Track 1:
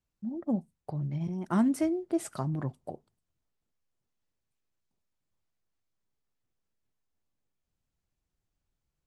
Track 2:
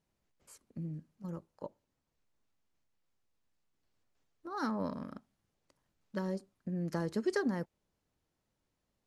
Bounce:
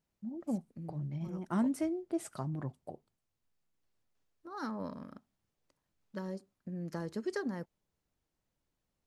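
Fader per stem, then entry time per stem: −5.5, −4.0 decibels; 0.00, 0.00 seconds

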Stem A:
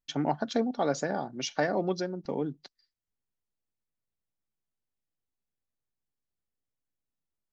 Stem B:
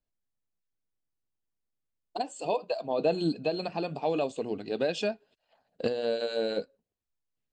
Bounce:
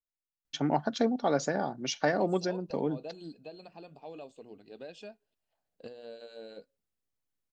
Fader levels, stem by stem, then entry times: +0.5, −16.5 decibels; 0.45, 0.00 seconds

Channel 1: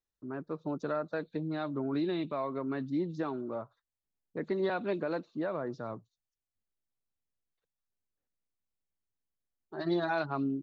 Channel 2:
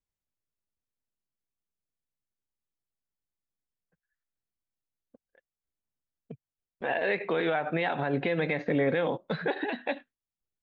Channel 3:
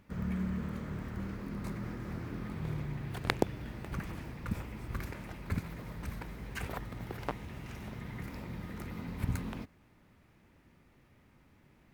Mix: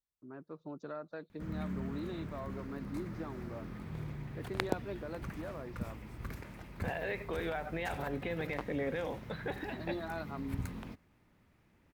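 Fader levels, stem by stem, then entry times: −9.5, −9.5, −4.5 decibels; 0.00, 0.00, 1.30 seconds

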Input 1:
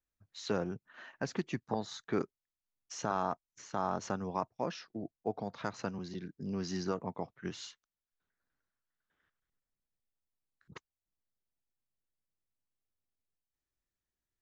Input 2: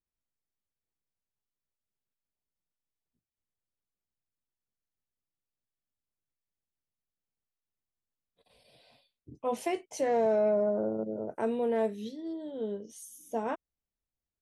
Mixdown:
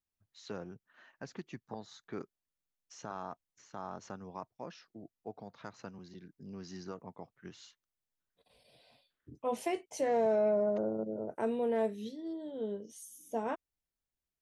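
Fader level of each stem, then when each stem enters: −9.0, −2.5 decibels; 0.00, 0.00 seconds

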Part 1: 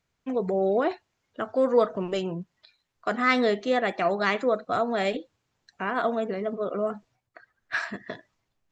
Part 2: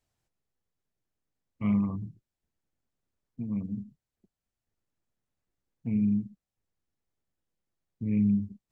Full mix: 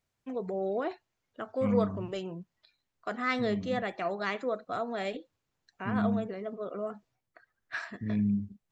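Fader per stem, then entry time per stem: −8.0, −3.5 decibels; 0.00, 0.00 seconds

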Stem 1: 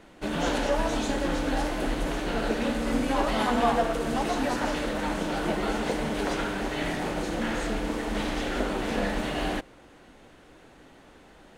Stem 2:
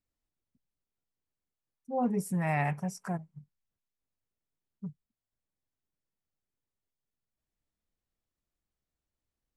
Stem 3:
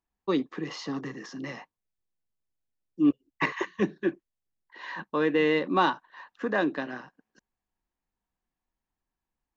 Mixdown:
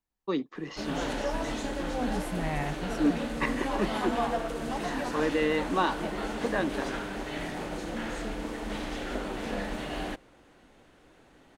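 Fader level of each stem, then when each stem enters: −5.5, −4.0, −3.5 decibels; 0.55, 0.00, 0.00 seconds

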